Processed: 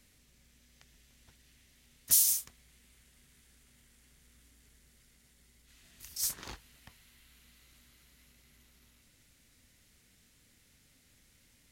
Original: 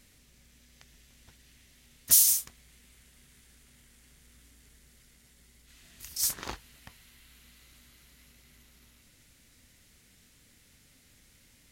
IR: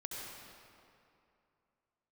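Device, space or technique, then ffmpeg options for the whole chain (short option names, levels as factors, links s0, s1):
one-band saturation: -filter_complex "[0:a]acrossover=split=230|2400[s0][s1][s2];[s1]asoftclip=type=tanh:threshold=0.015[s3];[s0][s3][s2]amix=inputs=3:normalize=0,volume=0.596"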